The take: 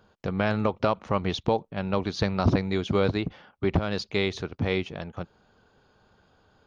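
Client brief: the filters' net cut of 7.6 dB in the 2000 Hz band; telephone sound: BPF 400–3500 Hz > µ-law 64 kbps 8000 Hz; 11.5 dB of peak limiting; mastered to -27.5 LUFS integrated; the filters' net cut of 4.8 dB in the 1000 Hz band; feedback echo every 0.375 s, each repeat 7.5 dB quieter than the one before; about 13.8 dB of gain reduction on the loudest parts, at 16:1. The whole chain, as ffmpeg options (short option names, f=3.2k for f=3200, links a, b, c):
-af "equalizer=f=1k:t=o:g=-4,equalizer=f=2k:t=o:g=-8,acompressor=threshold=-31dB:ratio=16,alimiter=level_in=7dB:limit=-24dB:level=0:latency=1,volume=-7dB,highpass=400,lowpass=3.5k,aecho=1:1:375|750|1125|1500|1875:0.422|0.177|0.0744|0.0312|0.0131,volume=20.5dB" -ar 8000 -c:a pcm_mulaw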